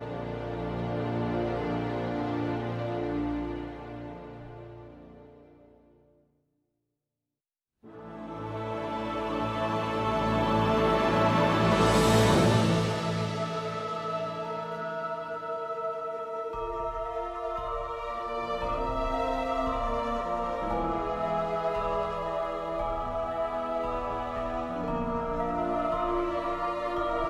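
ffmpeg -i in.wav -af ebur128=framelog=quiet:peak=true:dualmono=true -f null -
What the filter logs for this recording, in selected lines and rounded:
Integrated loudness:
  I:         -26.5 LUFS
  Threshold: -37.1 LUFS
Loudness range:
  LRA:        13.6 LU
  Threshold: -47.2 LUFS
  LRA low:   -35.2 LUFS
  LRA high:  -21.5 LUFS
True peak:
  Peak:      -10.4 dBFS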